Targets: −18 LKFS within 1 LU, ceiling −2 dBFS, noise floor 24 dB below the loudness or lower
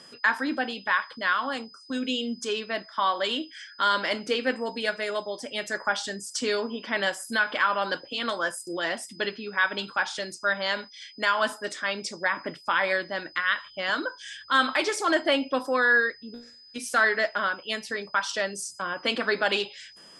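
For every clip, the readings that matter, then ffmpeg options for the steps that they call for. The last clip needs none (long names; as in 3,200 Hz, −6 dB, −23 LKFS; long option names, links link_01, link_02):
interfering tone 5,000 Hz; level of the tone −49 dBFS; integrated loudness −27.0 LKFS; sample peak −9.5 dBFS; target loudness −18.0 LKFS
→ -af "bandreject=frequency=5000:width=30"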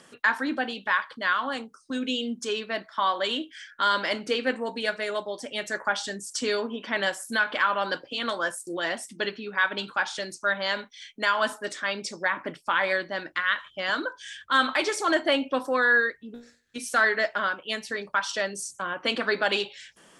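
interfering tone none found; integrated loudness −27.0 LKFS; sample peak −9.5 dBFS; target loudness −18.0 LKFS
→ -af "volume=9dB,alimiter=limit=-2dB:level=0:latency=1"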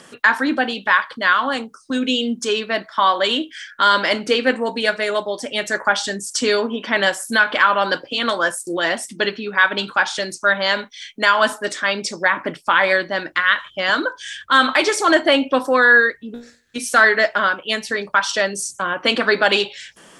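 integrated loudness −18.0 LKFS; sample peak −2.0 dBFS; background noise floor −49 dBFS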